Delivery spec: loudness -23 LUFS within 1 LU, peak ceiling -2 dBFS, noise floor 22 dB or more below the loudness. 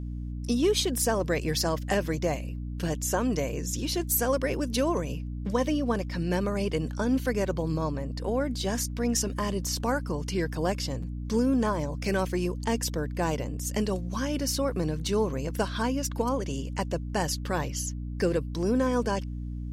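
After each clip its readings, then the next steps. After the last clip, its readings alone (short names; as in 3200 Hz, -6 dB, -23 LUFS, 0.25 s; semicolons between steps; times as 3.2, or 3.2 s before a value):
hum 60 Hz; harmonics up to 300 Hz; hum level -32 dBFS; loudness -29.0 LUFS; peak -13.5 dBFS; loudness target -23.0 LUFS
-> notches 60/120/180/240/300 Hz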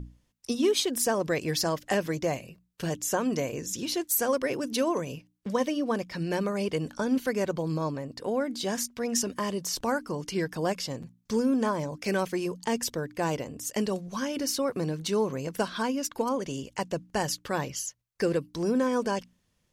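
hum none; loudness -29.5 LUFS; peak -14.0 dBFS; loudness target -23.0 LUFS
-> gain +6.5 dB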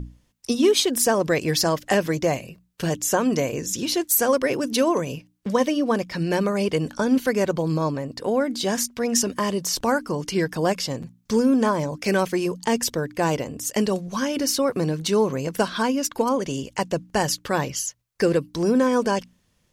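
loudness -23.0 LUFS; peak -7.5 dBFS; noise floor -66 dBFS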